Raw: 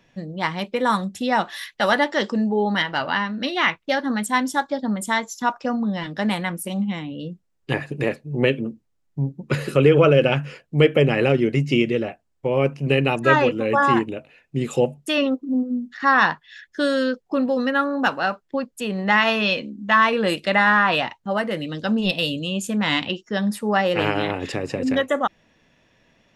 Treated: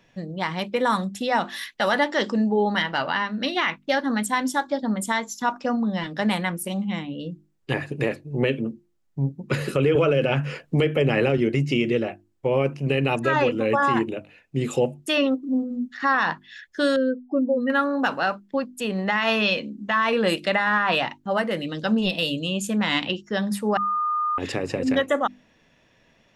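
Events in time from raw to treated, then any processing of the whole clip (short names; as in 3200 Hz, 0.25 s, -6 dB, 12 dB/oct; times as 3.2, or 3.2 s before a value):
9.95–11.38 three-band squash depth 70%
16.96–17.7 spectral contrast raised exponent 1.9
23.77–24.38 bleep 1220 Hz -21 dBFS
whole clip: notches 50/100/150/200/250/300/350 Hz; limiter -11.5 dBFS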